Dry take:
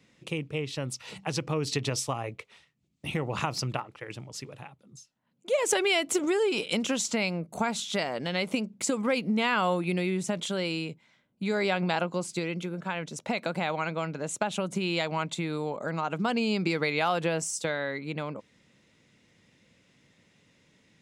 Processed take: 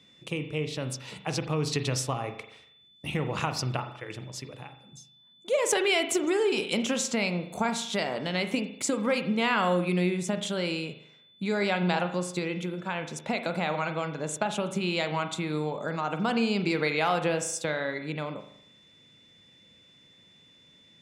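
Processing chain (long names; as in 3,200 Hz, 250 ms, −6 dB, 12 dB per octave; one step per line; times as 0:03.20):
steady tone 3,500 Hz −58 dBFS
on a send: convolution reverb RT60 0.70 s, pre-delay 39 ms, DRR 8 dB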